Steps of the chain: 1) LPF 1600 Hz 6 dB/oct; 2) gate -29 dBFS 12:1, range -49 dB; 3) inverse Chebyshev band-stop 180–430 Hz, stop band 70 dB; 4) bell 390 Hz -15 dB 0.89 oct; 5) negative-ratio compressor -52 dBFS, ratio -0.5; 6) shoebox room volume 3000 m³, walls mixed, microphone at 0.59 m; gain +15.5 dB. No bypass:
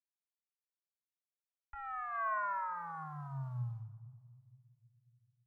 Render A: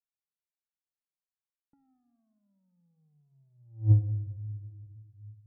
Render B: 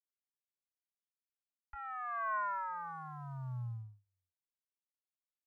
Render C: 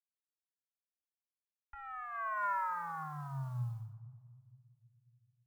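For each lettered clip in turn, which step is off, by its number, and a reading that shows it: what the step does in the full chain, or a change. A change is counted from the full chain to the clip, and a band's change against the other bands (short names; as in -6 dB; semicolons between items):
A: 3, crest factor change +5.5 dB; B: 6, echo-to-direct -10.5 dB to none; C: 1, 500 Hz band -2.5 dB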